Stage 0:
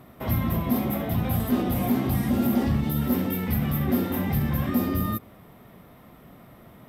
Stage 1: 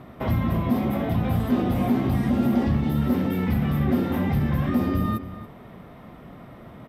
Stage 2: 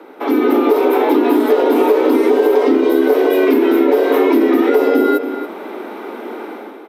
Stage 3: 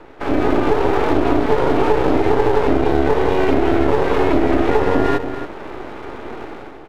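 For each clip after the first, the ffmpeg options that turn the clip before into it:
-filter_complex "[0:a]aemphasis=mode=reproduction:type=50fm,asplit=2[a][b];[b]acompressor=threshold=-30dB:ratio=6,volume=2.5dB[c];[a][c]amix=inputs=2:normalize=0,asplit=2[d][e];[e]adelay=279.9,volume=-13dB,highshelf=f=4k:g=-6.3[f];[d][f]amix=inputs=2:normalize=0,volume=-2dB"
-af "dynaudnorm=f=110:g=7:m=11dB,afreqshift=190,acompressor=threshold=-13dB:ratio=6,volume=4.5dB"
-af "lowpass=3.8k,aeval=exprs='max(val(0),0)':c=same,volume=1dB"

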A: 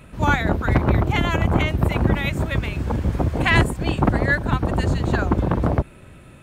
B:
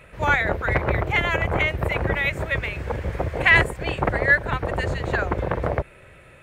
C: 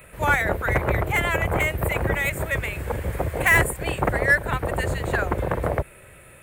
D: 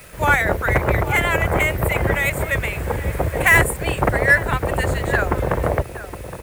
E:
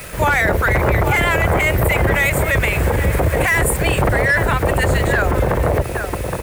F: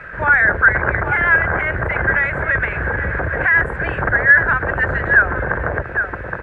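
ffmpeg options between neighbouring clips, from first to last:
-af "equalizer=f=250:t=o:w=1:g=-9,equalizer=f=500:t=o:w=1:g=9,equalizer=f=2k:t=o:w=1:g=11,volume=-5.5dB"
-filter_complex "[0:a]acrossover=split=130|2200[a][b][c];[c]asoftclip=type=tanh:threshold=-28dB[d];[a][b][d]amix=inputs=3:normalize=0,aexciter=amount=7.9:drive=2.3:freq=7.9k"
-filter_complex "[0:a]acrusher=bits=7:mix=0:aa=0.000001,asplit=2[a][b];[b]adelay=816.3,volume=-12dB,highshelf=f=4k:g=-18.4[c];[a][c]amix=inputs=2:normalize=0,volume=4dB"
-filter_complex "[0:a]asplit=2[a][b];[b]asoftclip=type=tanh:threshold=-15dB,volume=-3dB[c];[a][c]amix=inputs=2:normalize=0,alimiter=level_in=12dB:limit=-1dB:release=50:level=0:latency=1,volume=-7dB"
-af "lowpass=f=1.6k:t=q:w=8.5,volume=-7dB"

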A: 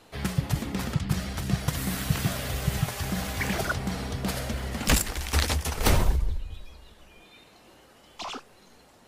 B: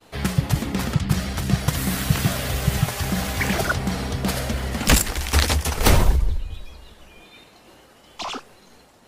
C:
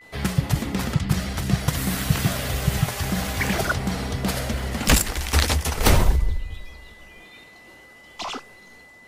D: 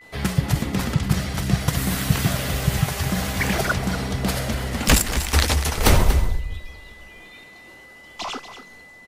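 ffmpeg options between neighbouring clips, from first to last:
-af "agate=range=-33dB:threshold=-52dB:ratio=3:detection=peak,volume=6dB"
-af "aeval=exprs='val(0)+0.00501*sin(2*PI*2000*n/s)':c=same,volume=-1dB"
-af "aecho=1:1:237:0.266,volume=1dB"

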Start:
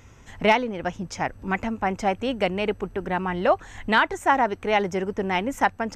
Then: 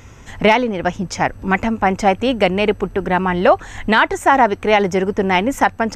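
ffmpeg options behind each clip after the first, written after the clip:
-af "alimiter=level_in=10dB:limit=-1dB:release=50:level=0:latency=1,volume=-1dB"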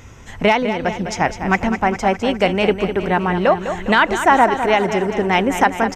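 -filter_complex "[0:a]tremolo=f=0.71:d=0.28,asplit=2[a][b];[b]aecho=0:1:204|408|612|816|1020|1224|1428:0.335|0.198|0.117|0.0688|0.0406|0.0239|0.0141[c];[a][c]amix=inputs=2:normalize=0"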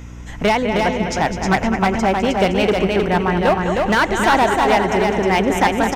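-af "volume=11dB,asoftclip=hard,volume=-11dB,aecho=1:1:312:0.668,aeval=exprs='val(0)+0.0224*(sin(2*PI*60*n/s)+sin(2*PI*2*60*n/s)/2+sin(2*PI*3*60*n/s)/3+sin(2*PI*4*60*n/s)/4+sin(2*PI*5*60*n/s)/5)':c=same"

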